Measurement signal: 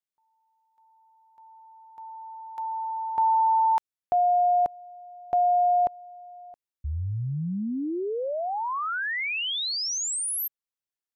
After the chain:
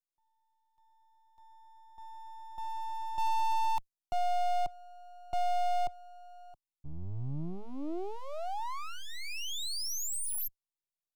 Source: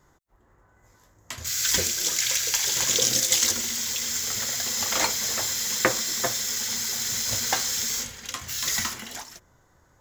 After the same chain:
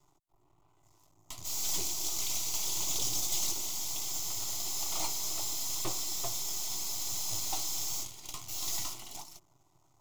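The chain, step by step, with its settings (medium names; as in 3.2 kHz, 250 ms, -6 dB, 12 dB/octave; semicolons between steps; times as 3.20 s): valve stage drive 19 dB, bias 0.35; half-wave rectifier; static phaser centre 330 Hz, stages 8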